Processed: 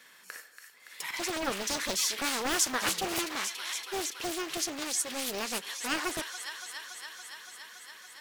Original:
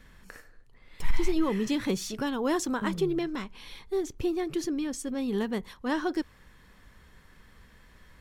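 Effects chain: Bessel high-pass 390 Hz, order 2; tilt +3 dB/oct; on a send: thin delay 0.283 s, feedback 80%, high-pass 1400 Hz, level -6.5 dB; on the sum: Doppler distortion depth 0.71 ms; gain +1.5 dB

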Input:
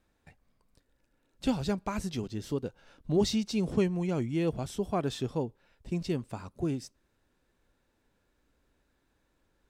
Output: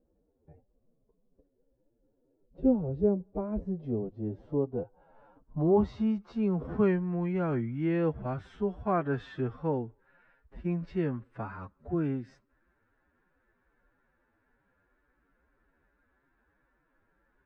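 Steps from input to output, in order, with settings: time stretch by phase-locked vocoder 1.8×; low-pass sweep 470 Hz -> 1600 Hz, 3.26–7.09

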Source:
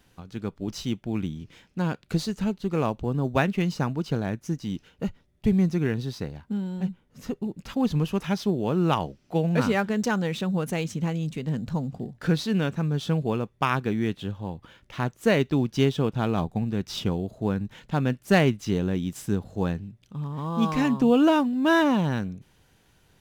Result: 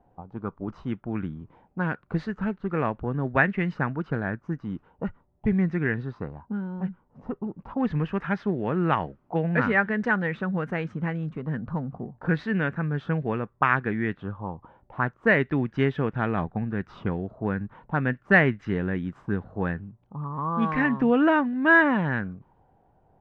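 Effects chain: envelope low-pass 750–1800 Hz up, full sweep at -22 dBFS; gain -2 dB

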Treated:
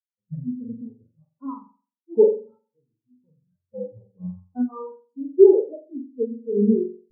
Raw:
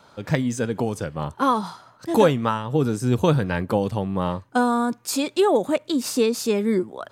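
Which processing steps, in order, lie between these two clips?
2.24–3.74 ladder low-pass 2800 Hz, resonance 55%; spring tank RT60 1.4 s, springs 44 ms, chirp 60 ms, DRR -2 dB; spectral expander 4:1; gain +2.5 dB

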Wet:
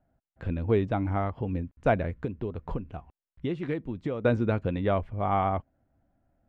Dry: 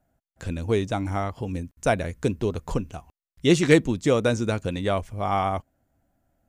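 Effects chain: 2.21–4.25 compressor 4:1, threshold -29 dBFS, peak gain reduction 15.5 dB; air absorption 470 m

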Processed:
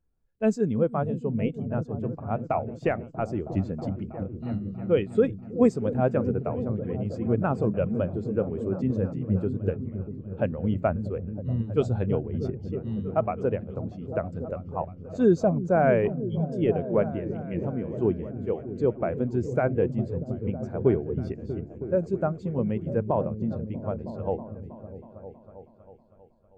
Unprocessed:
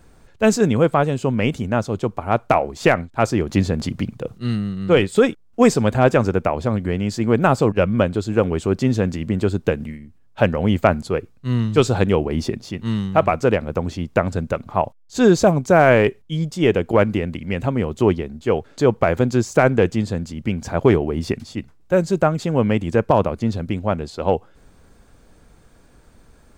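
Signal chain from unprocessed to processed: repeats that get brighter 0.32 s, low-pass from 200 Hz, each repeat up 1 oct, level -3 dB; spectral expander 1.5:1; gain -8.5 dB

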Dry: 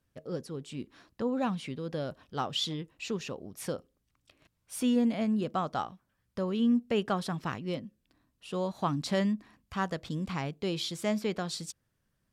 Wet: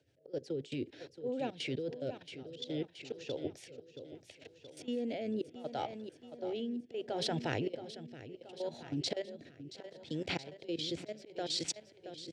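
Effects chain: fixed phaser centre 470 Hz, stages 4; auto swell 0.46 s; air absorption 110 m; level quantiser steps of 17 dB; HPF 100 Hz 24 dB/oct; feedback echo 0.675 s, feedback 52%, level -10.5 dB; rotary speaker horn 7.5 Hz, later 0.7 Hz, at 1.49; gain +17 dB

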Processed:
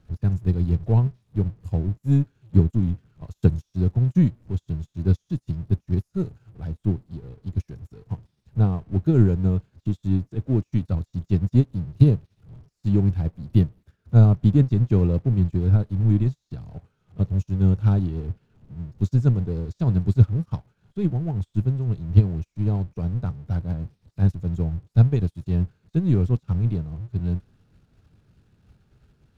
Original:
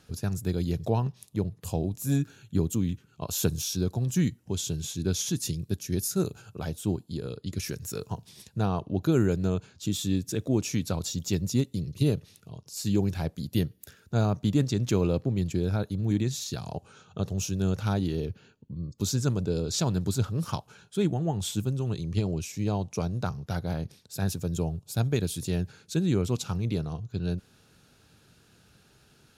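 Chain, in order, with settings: zero-crossing step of -32 dBFS; RIAA curve playback; upward expander 2.5:1, over -36 dBFS; gain +1.5 dB

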